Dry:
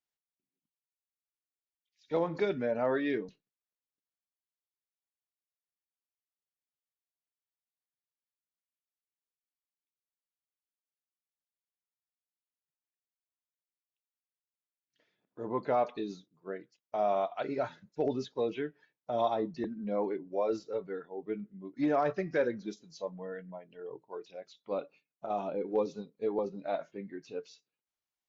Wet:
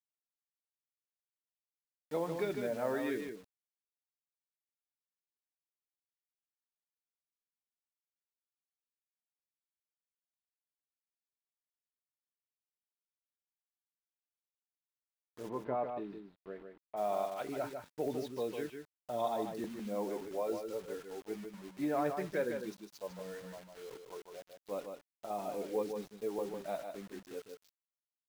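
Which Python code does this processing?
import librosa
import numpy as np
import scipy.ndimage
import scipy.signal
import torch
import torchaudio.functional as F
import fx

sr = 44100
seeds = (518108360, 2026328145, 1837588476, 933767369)

y = fx.quant_dither(x, sr, seeds[0], bits=8, dither='none')
y = fx.air_absorb(y, sr, metres=480.0, at=(15.48, 16.96), fade=0.02)
y = y + 10.0 ** (-6.5 / 20.0) * np.pad(y, (int(152 * sr / 1000.0), 0))[:len(y)]
y = y * 10.0 ** (-5.5 / 20.0)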